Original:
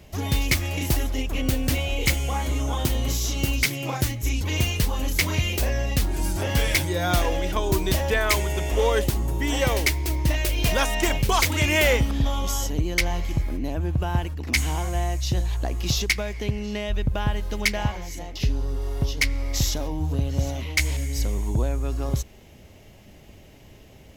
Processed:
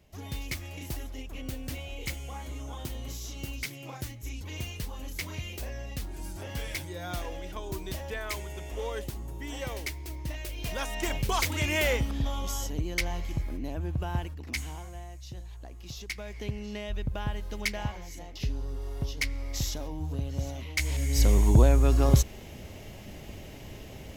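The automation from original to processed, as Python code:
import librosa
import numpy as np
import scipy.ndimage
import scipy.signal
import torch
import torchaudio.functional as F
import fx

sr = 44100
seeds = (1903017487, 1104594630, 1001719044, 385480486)

y = fx.gain(x, sr, db=fx.line((10.59, -13.5), (11.19, -7.0), (14.22, -7.0), (15.06, -18.0), (15.95, -18.0), (16.38, -8.0), (20.75, -8.0), (21.3, 5.0)))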